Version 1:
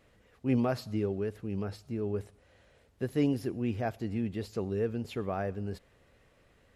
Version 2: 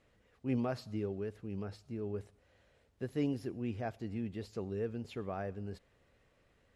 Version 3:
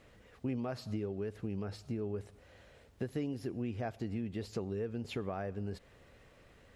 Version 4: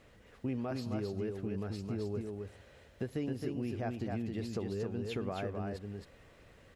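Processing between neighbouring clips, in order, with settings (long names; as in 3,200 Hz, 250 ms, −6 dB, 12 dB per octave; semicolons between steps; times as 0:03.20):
low-pass filter 9,900 Hz 12 dB per octave; level −6 dB
downward compressor 6 to 1, threshold −44 dBFS, peak gain reduction 14.5 dB; level +9.5 dB
single-tap delay 266 ms −4 dB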